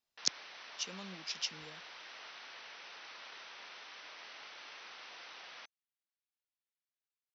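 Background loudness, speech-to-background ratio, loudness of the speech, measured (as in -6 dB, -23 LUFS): -49.5 LUFS, 10.0 dB, -39.5 LUFS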